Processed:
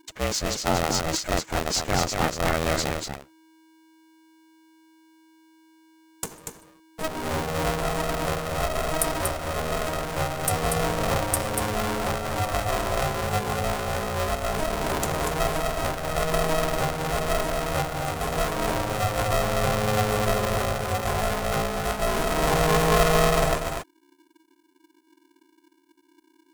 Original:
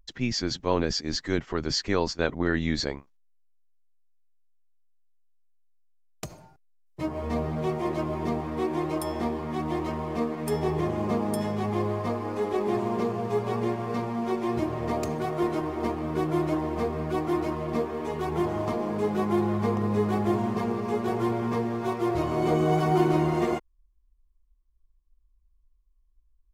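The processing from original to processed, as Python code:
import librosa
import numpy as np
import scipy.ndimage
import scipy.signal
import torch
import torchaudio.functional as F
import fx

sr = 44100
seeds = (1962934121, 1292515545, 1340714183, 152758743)

y = fx.high_shelf_res(x, sr, hz=6200.0, db=11.5, q=1.5)
y = y + 10.0 ** (-5.0 / 20.0) * np.pad(y, (int(238 * sr / 1000.0), 0))[:len(y)]
y = y * np.sign(np.sin(2.0 * np.pi * 320.0 * np.arange(len(y)) / sr))
y = y * librosa.db_to_amplitude(1.0)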